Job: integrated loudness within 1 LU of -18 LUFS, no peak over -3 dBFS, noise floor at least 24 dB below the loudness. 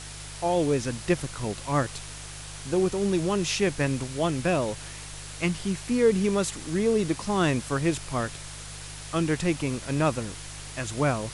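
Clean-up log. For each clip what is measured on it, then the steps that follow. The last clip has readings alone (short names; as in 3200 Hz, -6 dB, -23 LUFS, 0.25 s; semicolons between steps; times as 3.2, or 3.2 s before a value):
hum 50 Hz; harmonics up to 150 Hz; hum level -42 dBFS; noise floor -40 dBFS; noise floor target -51 dBFS; loudness -27.0 LUFS; peak -11.0 dBFS; loudness target -18.0 LUFS
-> de-hum 50 Hz, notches 3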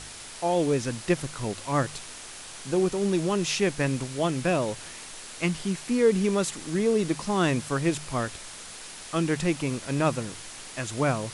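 hum none; noise floor -42 dBFS; noise floor target -51 dBFS
-> noise print and reduce 9 dB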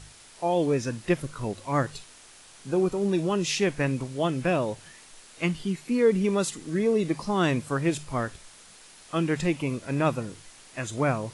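noise floor -51 dBFS; loudness -27.0 LUFS; peak -11.0 dBFS; loudness target -18.0 LUFS
-> gain +9 dB; limiter -3 dBFS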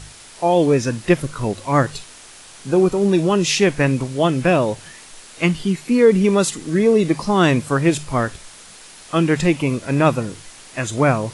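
loudness -18.0 LUFS; peak -3.0 dBFS; noise floor -42 dBFS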